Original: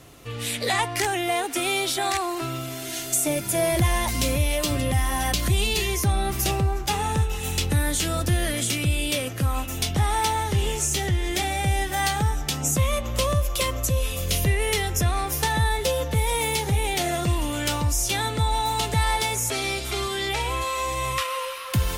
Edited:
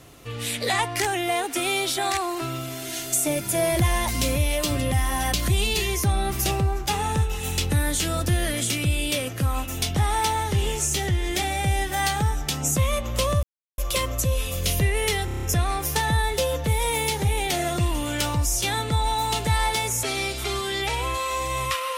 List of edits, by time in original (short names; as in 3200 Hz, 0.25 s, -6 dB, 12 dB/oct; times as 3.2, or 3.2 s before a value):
13.43 insert silence 0.35 s
14.9 stutter 0.03 s, 7 plays